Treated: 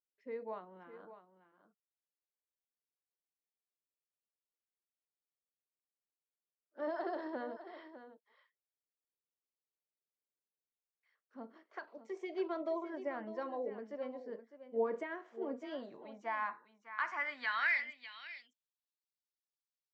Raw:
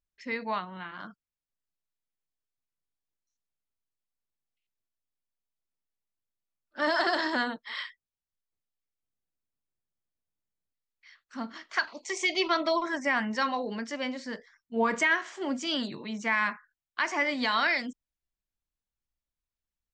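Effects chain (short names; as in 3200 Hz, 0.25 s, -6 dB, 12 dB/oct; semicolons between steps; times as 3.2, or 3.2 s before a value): echo 0.604 s -12.5 dB; band-pass sweep 460 Hz -> 4800 Hz, 15.47–19.15; gain -3 dB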